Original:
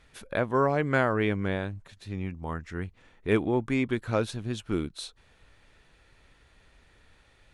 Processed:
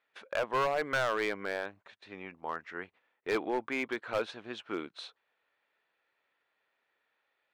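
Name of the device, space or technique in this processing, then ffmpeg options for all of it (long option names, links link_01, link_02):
walkie-talkie: -af "highpass=540,lowpass=2900,asoftclip=type=hard:threshold=-26dB,agate=range=-15dB:threshold=-57dB:ratio=16:detection=peak,volume=1.5dB"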